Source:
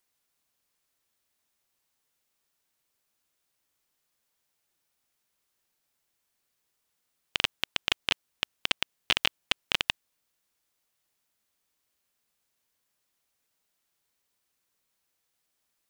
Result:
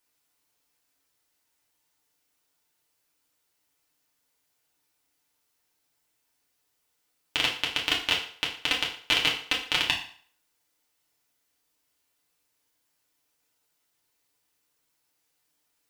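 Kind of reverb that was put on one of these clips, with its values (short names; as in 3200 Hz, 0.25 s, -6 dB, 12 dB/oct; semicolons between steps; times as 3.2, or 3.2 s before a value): FDN reverb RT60 0.52 s, low-frequency decay 0.8×, high-frequency decay 0.9×, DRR -3.5 dB; gain -1.5 dB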